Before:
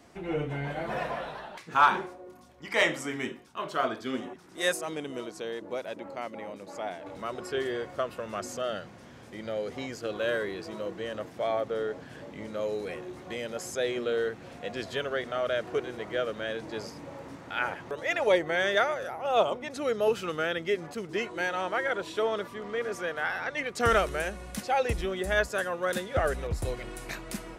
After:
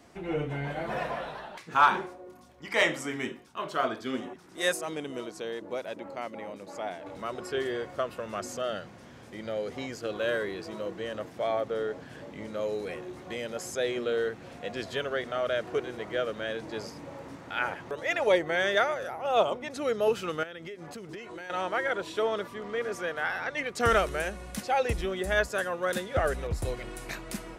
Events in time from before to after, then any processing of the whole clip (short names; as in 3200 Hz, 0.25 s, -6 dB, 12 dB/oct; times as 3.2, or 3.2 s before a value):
20.43–21.5 compressor 16:1, threshold -37 dBFS